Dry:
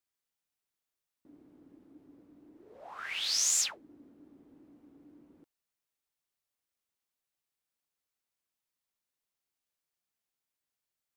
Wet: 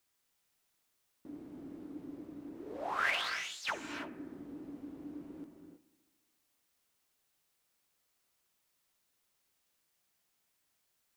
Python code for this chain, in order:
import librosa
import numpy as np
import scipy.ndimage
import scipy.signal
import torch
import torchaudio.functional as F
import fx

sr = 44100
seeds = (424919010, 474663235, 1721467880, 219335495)

y = fx.echo_bbd(x, sr, ms=71, stages=1024, feedback_pct=74, wet_db=-18.5)
y = fx.over_compress(y, sr, threshold_db=-39.0, ratio=-0.5)
y = fx.rev_gated(y, sr, seeds[0], gate_ms=350, shape='rising', drr_db=5.5)
y = y * 10.0 ** (3.0 / 20.0)